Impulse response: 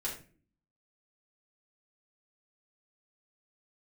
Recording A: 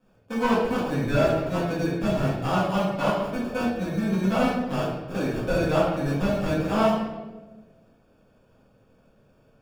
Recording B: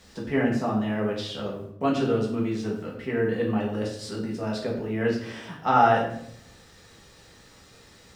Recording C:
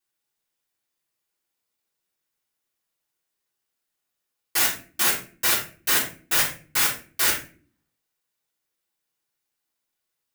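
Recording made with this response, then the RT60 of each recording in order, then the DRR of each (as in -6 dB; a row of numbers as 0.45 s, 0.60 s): C; 1.2 s, 0.70 s, no single decay rate; -9.5 dB, -4.0 dB, -6.5 dB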